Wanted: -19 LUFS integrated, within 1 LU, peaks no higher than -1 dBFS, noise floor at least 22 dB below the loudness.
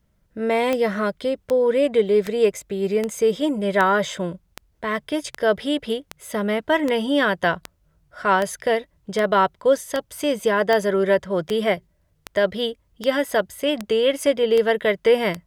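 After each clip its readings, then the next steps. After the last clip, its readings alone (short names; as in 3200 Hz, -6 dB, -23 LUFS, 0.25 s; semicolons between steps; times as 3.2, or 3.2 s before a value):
clicks 20; loudness -21.5 LUFS; peak -5.5 dBFS; loudness target -19.0 LUFS
-> de-click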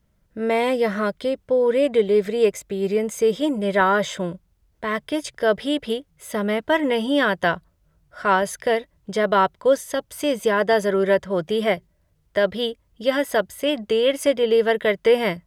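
clicks 0; loudness -21.5 LUFS; peak -5.5 dBFS; loudness target -19.0 LUFS
-> gain +2.5 dB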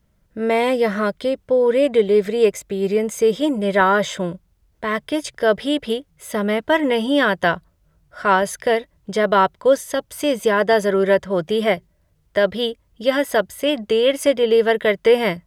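loudness -19.0 LUFS; peak -3.0 dBFS; noise floor -63 dBFS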